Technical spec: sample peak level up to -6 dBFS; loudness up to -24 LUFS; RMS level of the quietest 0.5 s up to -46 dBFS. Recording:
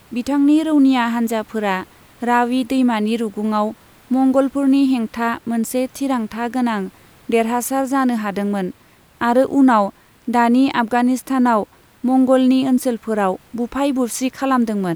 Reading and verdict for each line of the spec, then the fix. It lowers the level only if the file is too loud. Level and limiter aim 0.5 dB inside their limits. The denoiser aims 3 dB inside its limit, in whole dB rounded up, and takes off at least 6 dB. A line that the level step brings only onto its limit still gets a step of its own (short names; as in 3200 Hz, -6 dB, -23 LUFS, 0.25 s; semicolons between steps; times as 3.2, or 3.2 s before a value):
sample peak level -3.0 dBFS: fail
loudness -18.0 LUFS: fail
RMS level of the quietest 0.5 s -50 dBFS: OK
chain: gain -6.5 dB